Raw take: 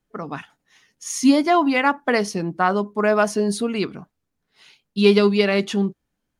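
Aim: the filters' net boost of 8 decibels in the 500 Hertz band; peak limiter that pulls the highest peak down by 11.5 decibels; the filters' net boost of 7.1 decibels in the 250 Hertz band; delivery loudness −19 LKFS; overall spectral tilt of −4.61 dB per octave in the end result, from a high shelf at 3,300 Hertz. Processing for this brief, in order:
parametric band 250 Hz +6.5 dB
parametric band 500 Hz +8.5 dB
high-shelf EQ 3,300 Hz −5 dB
level −1.5 dB
brickwall limiter −9.5 dBFS

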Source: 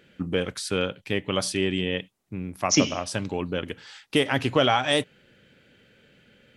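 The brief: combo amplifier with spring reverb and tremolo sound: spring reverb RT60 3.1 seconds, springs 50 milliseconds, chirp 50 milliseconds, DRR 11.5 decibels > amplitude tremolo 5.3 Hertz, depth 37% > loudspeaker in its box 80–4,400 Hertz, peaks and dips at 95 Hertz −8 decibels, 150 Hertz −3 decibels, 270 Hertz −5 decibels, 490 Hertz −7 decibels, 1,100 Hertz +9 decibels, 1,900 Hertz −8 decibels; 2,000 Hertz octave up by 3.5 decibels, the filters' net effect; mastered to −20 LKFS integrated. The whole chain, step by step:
parametric band 2,000 Hz +8 dB
spring reverb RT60 3.1 s, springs 50 ms, chirp 50 ms, DRR 11.5 dB
amplitude tremolo 5.3 Hz, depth 37%
loudspeaker in its box 80–4,400 Hz, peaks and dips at 95 Hz −8 dB, 150 Hz −3 dB, 270 Hz −5 dB, 490 Hz −7 dB, 1,100 Hz +9 dB, 1,900 Hz −8 dB
level +6 dB

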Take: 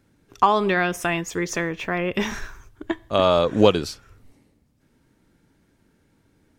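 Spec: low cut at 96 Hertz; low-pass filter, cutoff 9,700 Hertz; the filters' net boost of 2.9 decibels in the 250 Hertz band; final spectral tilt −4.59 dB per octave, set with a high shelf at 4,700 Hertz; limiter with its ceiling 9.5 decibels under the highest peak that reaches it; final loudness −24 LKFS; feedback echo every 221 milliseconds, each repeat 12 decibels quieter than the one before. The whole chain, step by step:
high-pass filter 96 Hz
low-pass filter 9,700 Hz
parametric band 250 Hz +4.5 dB
high-shelf EQ 4,700 Hz −7 dB
brickwall limiter −9.5 dBFS
repeating echo 221 ms, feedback 25%, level −12 dB
level −0.5 dB

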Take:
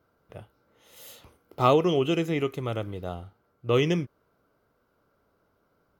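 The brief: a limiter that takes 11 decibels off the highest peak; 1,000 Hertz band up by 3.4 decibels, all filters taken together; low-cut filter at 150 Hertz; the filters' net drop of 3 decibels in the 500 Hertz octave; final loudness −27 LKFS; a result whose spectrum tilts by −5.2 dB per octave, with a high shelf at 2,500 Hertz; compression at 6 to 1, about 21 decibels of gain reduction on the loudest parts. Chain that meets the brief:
high-pass filter 150 Hz
parametric band 500 Hz −5 dB
parametric band 1,000 Hz +6.5 dB
high-shelf EQ 2,500 Hz −3.5 dB
downward compressor 6 to 1, threshold −37 dBFS
level +19.5 dB
brickwall limiter −13.5 dBFS

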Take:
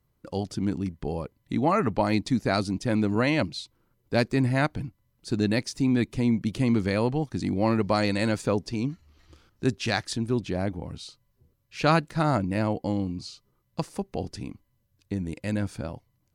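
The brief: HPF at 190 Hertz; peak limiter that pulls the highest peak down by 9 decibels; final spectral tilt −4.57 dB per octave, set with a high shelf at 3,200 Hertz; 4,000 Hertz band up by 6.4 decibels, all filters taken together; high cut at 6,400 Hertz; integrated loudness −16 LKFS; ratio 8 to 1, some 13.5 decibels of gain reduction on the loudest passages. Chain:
high-pass filter 190 Hz
low-pass filter 6,400 Hz
high-shelf EQ 3,200 Hz +5 dB
parametric band 4,000 Hz +4.5 dB
downward compressor 8 to 1, threshold −31 dBFS
level +22 dB
brickwall limiter −2.5 dBFS

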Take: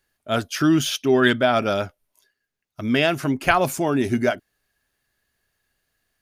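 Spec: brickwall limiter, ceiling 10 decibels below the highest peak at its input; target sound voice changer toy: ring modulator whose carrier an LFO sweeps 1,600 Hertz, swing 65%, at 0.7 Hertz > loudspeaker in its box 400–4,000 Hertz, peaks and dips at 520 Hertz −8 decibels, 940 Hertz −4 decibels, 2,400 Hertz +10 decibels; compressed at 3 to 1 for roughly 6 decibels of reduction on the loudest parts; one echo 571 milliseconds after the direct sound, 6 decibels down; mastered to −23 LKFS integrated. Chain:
downward compressor 3 to 1, threshold −21 dBFS
brickwall limiter −16.5 dBFS
single-tap delay 571 ms −6 dB
ring modulator whose carrier an LFO sweeps 1,600 Hz, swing 65%, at 0.7 Hz
loudspeaker in its box 400–4,000 Hz, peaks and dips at 520 Hz −8 dB, 940 Hz −4 dB, 2,400 Hz +10 dB
level +0.5 dB

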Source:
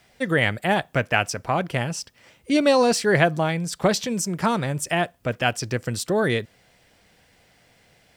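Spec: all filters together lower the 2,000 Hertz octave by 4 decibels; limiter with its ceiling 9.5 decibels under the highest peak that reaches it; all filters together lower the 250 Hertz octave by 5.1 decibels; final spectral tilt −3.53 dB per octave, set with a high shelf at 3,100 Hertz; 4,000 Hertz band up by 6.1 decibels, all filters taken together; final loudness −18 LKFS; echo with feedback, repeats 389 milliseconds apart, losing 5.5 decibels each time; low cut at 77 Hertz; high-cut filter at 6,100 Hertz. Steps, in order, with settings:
high-pass filter 77 Hz
low-pass filter 6,100 Hz
parametric band 250 Hz −7 dB
parametric band 2,000 Hz −8.5 dB
high-shelf EQ 3,100 Hz +3.5 dB
parametric band 4,000 Hz +9 dB
brickwall limiter −14 dBFS
repeating echo 389 ms, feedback 53%, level −5.5 dB
level +7 dB

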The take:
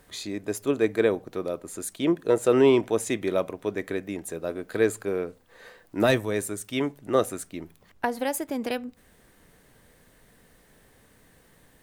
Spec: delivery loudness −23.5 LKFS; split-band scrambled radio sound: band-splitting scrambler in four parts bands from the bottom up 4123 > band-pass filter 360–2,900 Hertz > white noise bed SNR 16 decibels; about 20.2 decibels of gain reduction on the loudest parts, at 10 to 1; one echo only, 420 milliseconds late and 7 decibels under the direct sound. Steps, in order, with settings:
downward compressor 10 to 1, threshold −36 dBFS
single-tap delay 420 ms −7 dB
band-splitting scrambler in four parts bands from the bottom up 4123
band-pass filter 360–2,900 Hz
white noise bed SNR 16 dB
level +16 dB

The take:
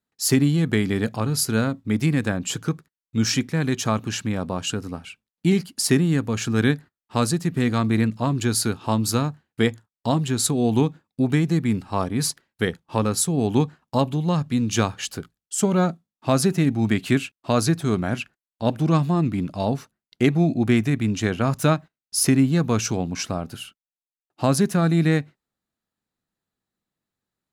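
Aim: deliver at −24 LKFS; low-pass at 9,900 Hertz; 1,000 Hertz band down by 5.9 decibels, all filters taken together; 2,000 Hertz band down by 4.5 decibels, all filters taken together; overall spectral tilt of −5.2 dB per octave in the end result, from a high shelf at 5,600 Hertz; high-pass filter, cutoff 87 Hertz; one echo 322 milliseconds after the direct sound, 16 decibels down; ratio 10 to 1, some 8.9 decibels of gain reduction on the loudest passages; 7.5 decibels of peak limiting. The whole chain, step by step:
high-pass filter 87 Hz
low-pass filter 9,900 Hz
parametric band 1,000 Hz −7 dB
parametric band 2,000 Hz −3 dB
high-shelf EQ 5,600 Hz −4.5 dB
downward compressor 10 to 1, threshold −23 dBFS
brickwall limiter −18.5 dBFS
single-tap delay 322 ms −16 dB
level +6.5 dB

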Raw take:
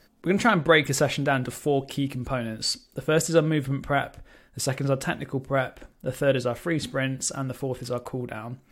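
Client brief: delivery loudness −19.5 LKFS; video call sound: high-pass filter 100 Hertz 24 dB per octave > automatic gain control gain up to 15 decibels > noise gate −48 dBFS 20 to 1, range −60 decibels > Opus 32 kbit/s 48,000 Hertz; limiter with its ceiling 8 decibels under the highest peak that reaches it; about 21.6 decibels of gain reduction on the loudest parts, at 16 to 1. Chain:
downward compressor 16 to 1, threshold −35 dBFS
brickwall limiter −32.5 dBFS
high-pass filter 100 Hz 24 dB per octave
automatic gain control gain up to 15 dB
noise gate −48 dBFS 20 to 1, range −60 dB
level +24 dB
Opus 32 kbit/s 48,000 Hz

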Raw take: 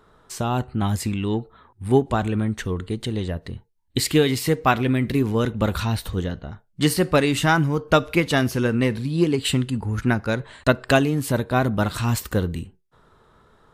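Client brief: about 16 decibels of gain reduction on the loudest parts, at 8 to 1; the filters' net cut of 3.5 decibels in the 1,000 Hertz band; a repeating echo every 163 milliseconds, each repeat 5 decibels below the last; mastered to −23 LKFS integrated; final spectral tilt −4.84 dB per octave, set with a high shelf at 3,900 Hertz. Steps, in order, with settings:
parametric band 1,000 Hz −5.5 dB
high-shelf EQ 3,900 Hz +5.5 dB
downward compressor 8 to 1, threshold −30 dBFS
repeating echo 163 ms, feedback 56%, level −5 dB
level +10 dB

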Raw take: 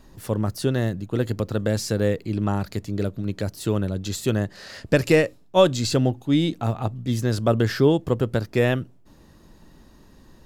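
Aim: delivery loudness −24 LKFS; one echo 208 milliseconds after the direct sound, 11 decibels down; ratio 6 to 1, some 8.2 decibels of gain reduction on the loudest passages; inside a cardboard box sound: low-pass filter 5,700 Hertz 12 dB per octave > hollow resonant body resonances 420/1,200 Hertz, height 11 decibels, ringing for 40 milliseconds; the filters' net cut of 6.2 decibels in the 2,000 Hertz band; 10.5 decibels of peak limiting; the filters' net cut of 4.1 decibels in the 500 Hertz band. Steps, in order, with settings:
parametric band 500 Hz −4.5 dB
parametric band 2,000 Hz −7.5 dB
downward compressor 6 to 1, threshold −24 dBFS
brickwall limiter −25.5 dBFS
low-pass filter 5,700 Hz 12 dB per octave
single-tap delay 208 ms −11 dB
hollow resonant body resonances 420/1,200 Hz, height 11 dB, ringing for 40 ms
level +9.5 dB

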